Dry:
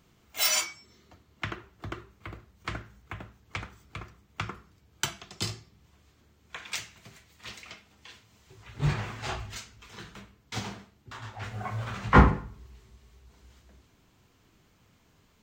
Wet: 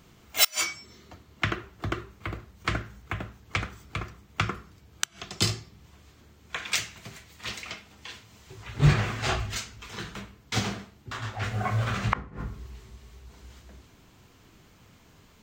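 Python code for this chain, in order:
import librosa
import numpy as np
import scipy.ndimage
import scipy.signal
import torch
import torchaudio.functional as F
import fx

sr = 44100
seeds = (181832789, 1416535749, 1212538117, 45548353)

y = fx.dynamic_eq(x, sr, hz=910.0, q=6.3, threshold_db=-58.0, ratio=4.0, max_db=-8)
y = fx.gate_flip(y, sr, shuts_db=-13.0, range_db=-31)
y = y * librosa.db_to_amplitude(7.5)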